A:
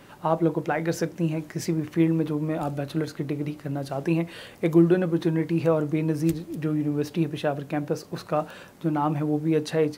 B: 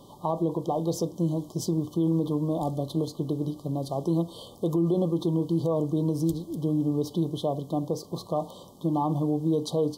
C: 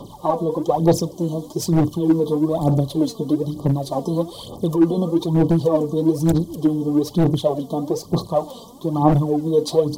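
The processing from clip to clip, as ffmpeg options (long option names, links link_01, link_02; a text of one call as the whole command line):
ffmpeg -i in.wav -af "afftfilt=real='re*(1-between(b*sr/4096,1200,3000))':imag='im*(1-between(b*sr/4096,1200,3000))':win_size=4096:overlap=0.75,alimiter=limit=-16.5dB:level=0:latency=1:release=50" out.wav
ffmpeg -i in.wav -filter_complex "[0:a]aphaser=in_gain=1:out_gain=1:delay=4.5:decay=0.69:speed=1.1:type=sinusoidal,acrossover=split=350|1100|2100[link_01][link_02][link_03][link_04];[link_01]aeval=exprs='0.133*(abs(mod(val(0)/0.133+3,4)-2)-1)':channel_layout=same[link_05];[link_05][link_02][link_03][link_04]amix=inputs=4:normalize=0,volume=5.5dB" out.wav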